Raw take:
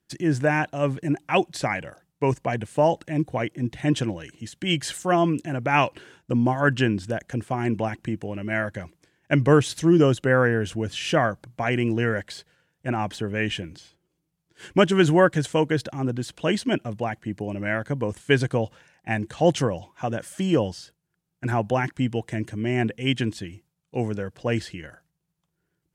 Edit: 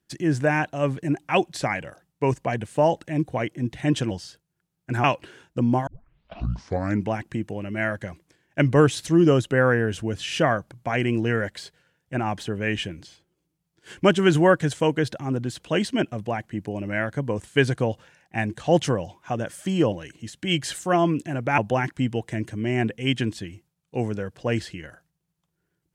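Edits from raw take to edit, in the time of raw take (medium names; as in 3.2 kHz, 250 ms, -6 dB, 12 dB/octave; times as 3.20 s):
4.11–5.77 s: swap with 20.65–21.58 s
6.60 s: tape start 1.23 s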